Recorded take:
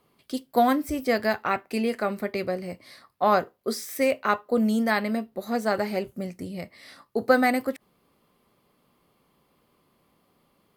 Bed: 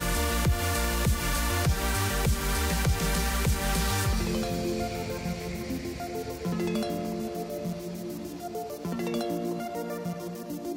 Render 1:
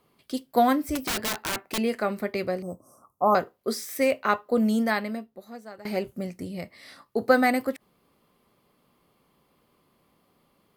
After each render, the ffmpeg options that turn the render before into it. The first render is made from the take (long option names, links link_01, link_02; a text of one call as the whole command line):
ffmpeg -i in.wav -filter_complex "[0:a]asettb=1/sr,asplit=3[link_01][link_02][link_03];[link_01]atrim=end=0.954[link_04];[link_02]atrim=start=0.95:end=1.78,asetpts=PTS-STARTPTS,afade=type=in:duration=0.004:curve=qsin,afade=type=out:start_time=0.826:duration=0.004:curve=qsin,aeval=exprs='(mod(13.3*val(0)+1,2)-1)/13.3':channel_layout=same[link_05];[link_03]atrim=start=1.776[link_06];[link_04][link_05]acrossfade=duration=0.004:curve1=hsin:curve2=qsin[link_07];[link_07][link_06]acrossfade=duration=0.004:curve1=qsin:curve2=hsin,asettb=1/sr,asplit=3[link_08][link_09][link_10];[link_08]atrim=end=2.624[link_11];[link_09]atrim=start=2.62:end=3.35,asetpts=PTS-STARTPTS,afade=type=in:duration=0.004:curve=qsin,afade=type=out:start_time=0.726:duration=0.004:curve=qsin,asuperstop=centerf=2800:order=20:qfactor=0.63[link_12];[link_10]atrim=start=3.346[link_13];[link_11][link_12]acrossfade=duration=0.004:curve1=hsin:curve2=qsin[link_14];[link_14][link_13]acrossfade=duration=0.004:curve1=qsin:curve2=hsin,asplit=2[link_15][link_16];[link_15]atrim=end=5.85,asetpts=PTS-STARTPTS,afade=type=out:start_time=4.82:duration=1.03:curve=qua:silence=0.105925[link_17];[link_16]atrim=start=5.85,asetpts=PTS-STARTPTS,afade=type=in:duration=0.004:curve=hsin:silence=0.105925[link_18];[link_17][link_18]concat=n=2:v=0:a=1" out.wav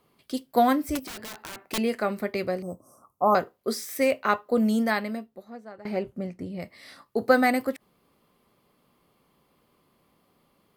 ffmpeg -i in.wav -filter_complex "[0:a]asettb=1/sr,asplit=3[link_01][link_02][link_03];[link_01]atrim=end=0.994[link_04];[link_02]atrim=start=0.99:end=1.71,asetpts=PTS-STARTPTS,afade=type=in:duration=0.004:curve=qsin,afade=type=out:start_time=0.716:duration=0.004:curve=qsin,acompressor=threshold=-37dB:ratio=6:attack=3.2:release=140:knee=1:detection=peak[link_05];[link_03]atrim=start=1.706[link_06];[link_04][link_05]acrossfade=duration=0.004:curve1=hsin:curve2=qsin[link_07];[link_07][link_06]acrossfade=duration=0.004:curve1=qsin:curve2=hsin,asplit=3[link_08][link_09][link_10];[link_08]afade=type=out:start_time=5.41:duration=0.02[link_11];[link_09]lowpass=frequency=1900:poles=1,afade=type=in:start_time=5.41:duration=0.02,afade=type=out:start_time=6.6:duration=0.02[link_12];[link_10]afade=type=in:start_time=6.6:duration=0.02[link_13];[link_11][link_12][link_13]amix=inputs=3:normalize=0" out.wav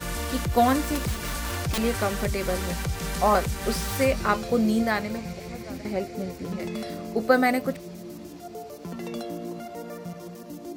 ffmpeg -i in.wav -i bed.wav -filter_complex "[1:a]volume=-3.5dB[link_01];[0:a][link_01]amix=inputs=2:normalize=0" out.wav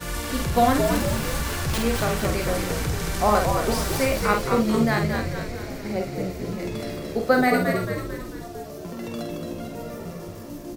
ffmpeg -i in.wav -filter_complex "[0:a]asplit=2[link_01][link_02];[link_02]adelay=48,volume=-5dB[link_03];[link_01][link_03]amix=inputs=2:normalize=0,asplit=8[link_04][link_05][link_06][link_07][link_08][link_09][link_10][link_11];[link_05]adelay=222,afreqshift=-70,volume=-5dB[link_12];[link_06]adelay=444,afreqshift=-140,volume=-10.7dB[link_13];[link_07]adelay=666,afreqshift=-210,volume=-16.4dB[link_14];[link_08]adelay=888,afreqshift=-280,volume=-22dB[link_15];[link_09]adelay=1110,afreqshift=-350,volume=-27.7dB[link_16];[link_10]adelay=1332,afreqshift=-420,volume=-33.4dB[link_17];[link_11]adelay=1554,afreqshift=-490,volume=-39.1dB[link_18];[link_04][link_12][link_13][link_14][link_15][link_16][link_17][link_18]amix=inputs=8:normalize=0" out.wav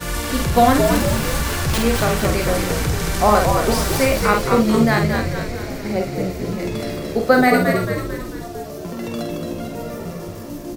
ffmpeg -i in.wav -af "volume=5.5dB,alimiter=limit=-2dB:level=0:latency=1" out.wav